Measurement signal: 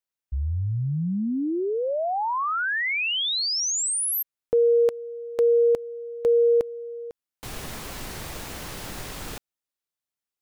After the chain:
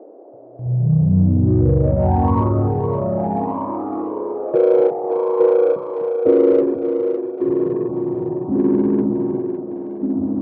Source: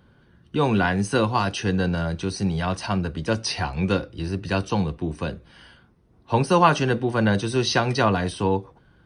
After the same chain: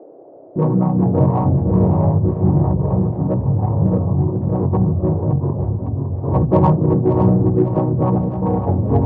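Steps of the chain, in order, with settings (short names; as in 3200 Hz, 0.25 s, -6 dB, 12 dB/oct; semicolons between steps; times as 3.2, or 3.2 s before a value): chord vocoder major triad, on B2; echoes that change speed 0.2 s, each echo -5 st, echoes 2; steep low-pass 1100 Hz 72 dB/oct; notches 60/120/180/240 Hz; gate with hold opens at -36 dBFS, hold 0.335 s, range -17 dB; in parallel at -8 dB: soft clip -25 dBFS; on the sum: band noise 290–680 Hz -47 dBFS; on a send: split-band echo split 380 Hz, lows 0.249 s, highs 0.558 s, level -8 dB; on the sum: ending taper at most 200 dB/s; gain +5 dB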